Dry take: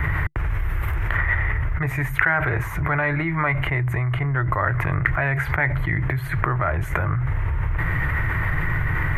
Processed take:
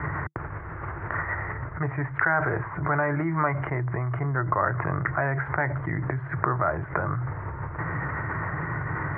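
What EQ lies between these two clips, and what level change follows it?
HPF 160 Hz 12 dB/oct; LPF 1500 Hz 24 dB/oct; 0.0 dB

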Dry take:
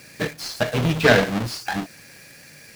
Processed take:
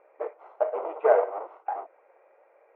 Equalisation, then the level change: brick-wall FIR high-pass 280 Hz; elliptic low-pass 1800 Hz, stop band 60 dB; fixed phaser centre 710 Hz, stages 4; 0.0 dB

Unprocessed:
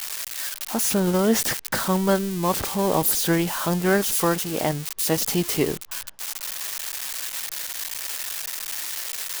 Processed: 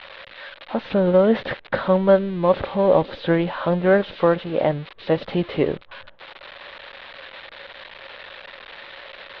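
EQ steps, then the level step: elliptic low-pass 3900 Hz, stop band 60 dB; air absorption 230 m; bell 550 Hz +12 dB 0.31 oct; +2.0 dB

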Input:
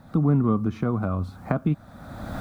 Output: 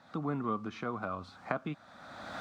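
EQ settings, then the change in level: HPF 1200 Hz 6 dB/oct; air absorption 140 m; high shelf 3400 Hz +8.5 dB; 0.0 dB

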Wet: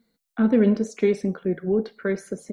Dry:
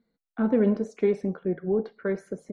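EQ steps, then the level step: dynamic EQ 880 Hz, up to -5 dB, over -40 dBFS, Q 1.3; bell 230 Hz +3.5 dB 0.21 oct; high shelf 2700 Hz +11.5 dB; +3.0 dB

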